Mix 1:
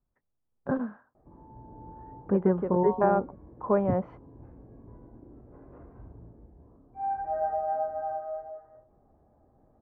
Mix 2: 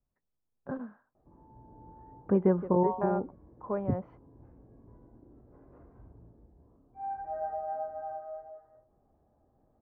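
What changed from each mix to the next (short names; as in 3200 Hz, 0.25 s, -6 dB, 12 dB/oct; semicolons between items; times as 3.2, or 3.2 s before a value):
first voice -8.5 dB; background -6.0 dB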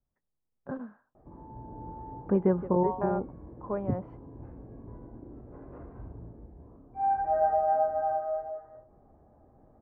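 background +10.0 dB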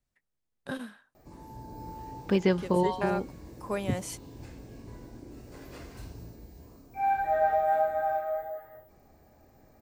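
master: remove LPF 1200 Hz 24 dB/oct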